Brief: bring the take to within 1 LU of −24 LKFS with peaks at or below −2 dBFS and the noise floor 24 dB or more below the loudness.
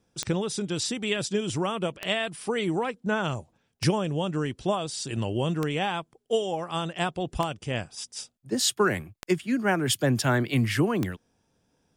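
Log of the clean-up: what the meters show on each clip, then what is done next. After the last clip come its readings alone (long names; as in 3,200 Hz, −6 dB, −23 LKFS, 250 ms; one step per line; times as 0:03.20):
number of clicks 7; integrated loudness −28.0 LKFS; sample peak −11.0 dBFS; target loudness −24.0 LKFS
→ click removal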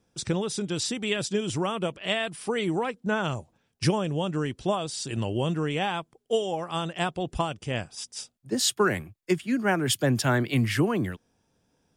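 number of clicks 0; integrated loudness −28.0 LKFS; sample peak −11.0 dBFS; target loudness −24.0 LKFS
→ level +4 dB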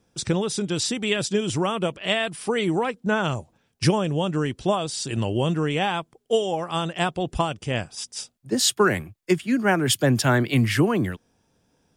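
integrated loudness −24.0 LKFS; sample peak −7.0 dBFS; background noise floor −69 dBFS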